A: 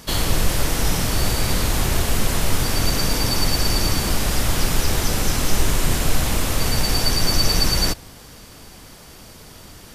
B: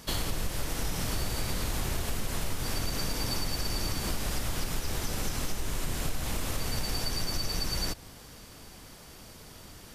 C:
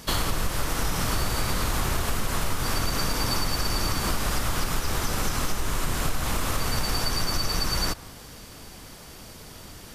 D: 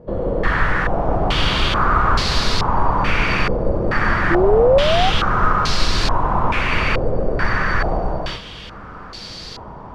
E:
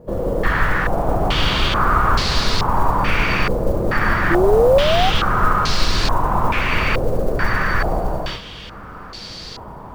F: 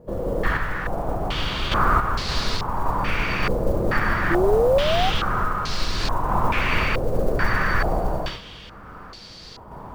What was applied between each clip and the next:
downward compressor, threshold −20 dBFS, peak gain reduction 10 dB; level −6.5 dB
dynamic equaliser 1,200 Hz, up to +7 dB, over −56 dBFS, Q 1.6; level +5 dB
reverb whose tail is shaped and stops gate 480 ms flat, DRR −6.5 dB; sound drawn into the spectrogram rise, 0:04.30–0:05.10, 330–790 Hz −18 dBFS; low-pass on a step sequencer 2.3 Hz 520–4,400 Hz
noise that follows the level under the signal 32 dB
sample-and-hold tremolo; level −2 dB

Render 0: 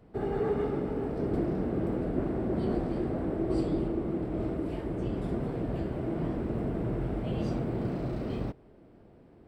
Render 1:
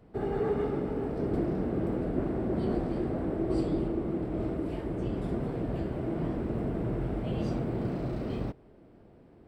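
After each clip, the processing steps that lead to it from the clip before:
no processing that can be heard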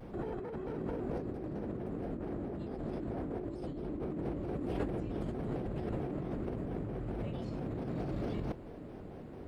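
compressor whose output falls as the input rises −39 dBFS, ratio −1
pitch modulation by a square or saw wave square 4.5 Hz, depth 160 cents
level +1 dB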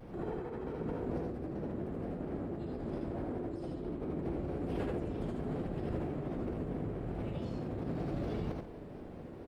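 multi-tap delay 76/88/136 ms −4/−6/−12.5 dB
level −2 dB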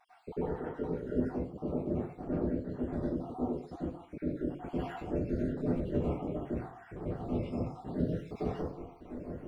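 time-frequency cells dropped at random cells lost 72%
convolution reverb RT60 0.50 s, pre-delay 87 ms, DRR −10 dB
level −3.5 dB

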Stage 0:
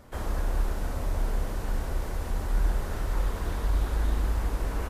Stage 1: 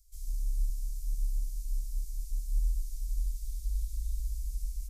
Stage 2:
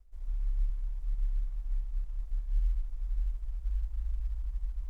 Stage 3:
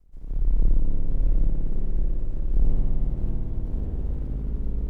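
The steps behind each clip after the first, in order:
inverse Chebyshev band-stop filter 140–1,800 Hz, stop band 60 dB; flat-topped bell 1,600 Hz +15.5 dB 1.3 octaves; level −2 dB
running median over 41 samples; reversed playback; upward compression, threshold −33 dBFS; reversed playback
sub-octave generator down 1 octave, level +2 dB; convolution reverb RT60 4.0 s, pre-delay 56 ms, DRR −4 dB

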